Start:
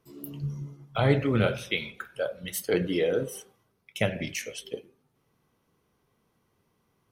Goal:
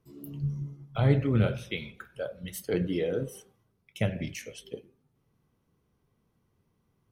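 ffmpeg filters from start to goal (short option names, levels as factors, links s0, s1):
-af "lowshelf=f=260:g=11.5,volume=0.447"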